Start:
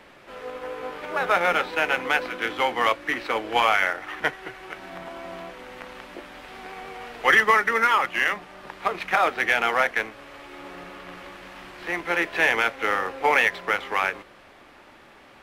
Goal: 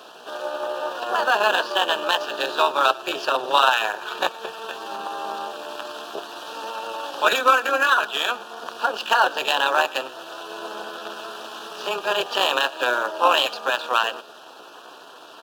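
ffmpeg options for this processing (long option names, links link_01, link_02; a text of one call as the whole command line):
ffmpeg -i in.wav -filter_complex "[0:a]tremolo=f=200:d=0.75,highpass=320,asplit=2[link_01][link_02];[link_02]aecho=0:1:109:0.075[link_03];[link_01][link_03]amix=inputs=2:normalize=0,asetrate=52444,aresample=44100,atempo=0.840896,asuperstop=centerf=2100:order=4:qfactor=1.8,asplit=2[link_04][link_05];[link_05]acompressor=threshold=-38dB:ratio=6,volume=0dB[link_06];[link_04][link_06]amix=inputs=2:normalize=0,volume=6.5dB" out.wav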